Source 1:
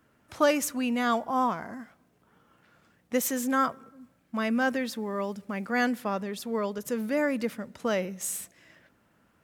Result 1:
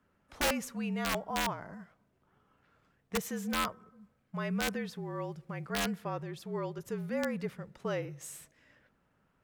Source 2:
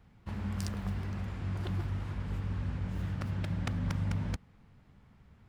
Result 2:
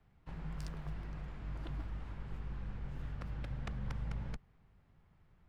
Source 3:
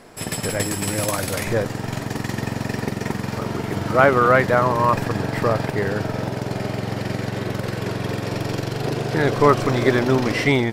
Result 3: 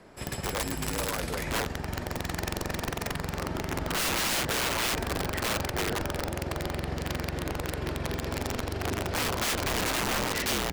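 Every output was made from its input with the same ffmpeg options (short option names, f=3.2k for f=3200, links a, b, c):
-af "afreqshift=-44,highshelf=f=5.4k:g=-9,aeval=exprs='(mod(6.68*val(0)+1,2)-1)/6.68':c=same,volume=-6.5dB"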